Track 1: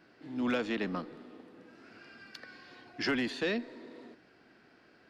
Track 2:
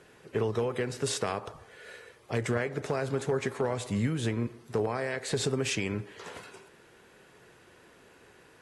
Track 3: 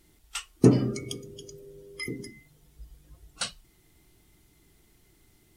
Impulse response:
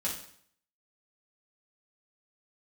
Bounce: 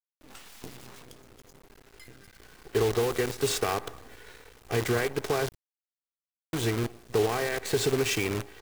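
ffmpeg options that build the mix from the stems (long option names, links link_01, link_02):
-filter_complex "[0:a]aeval=exprs='(mod(84.1*val(0)+1,2)-1)/84.1':channel_layout=same,volume=-3.5dB[link_01];[1:a]highshelf=frequency=9400:gain=-4.5,aecho=1:1:2.6:0.47,aeval=exprs='val(0)+0.00112*(sin(2*PI*60*n/s)+sin(2*PI*2*60*n/s)/2+sin(2*PI*3*60*n/s)/3+sin(2*PI*4*60*n/s)/4+sin(2*PI*5*60*n/s)/5)':channel_layout=same,adelay=2400,volume=2dB,asplit=3[link_02][link_03][link_04];[link_02]atrim=end=5.49,asetpts=PTS-STARTPTS,afade=type=out:start_time=5.486:duration=0.004:curve=hsin[link_05];[link_03]atrim=start=5.49:end=6.53,asetpts=PTS-STARTPTS,volume=0[link_06];[link_04]atrim=start=6.53,asetpts=PTS-STARTPTS,afade=type=in:duration=0.004:curve=hsin[link_07];[link_05][link_06][link_07]concat=n=3:v=0:a=1[link_08];[2:a]asubboost=boost=10:cutoff=86,acompressor=threshold=-37dB:ratio=2.5,flanger=delay=5.2:depth=8:regen=75:speed=0.59:shape=triangular,volume=-4dB[link_09];[link_01][link_08][link_09]amix=inputs=3:normalize=0,acrusher=bits=6:dc=4:mix=0:aa=0.000001"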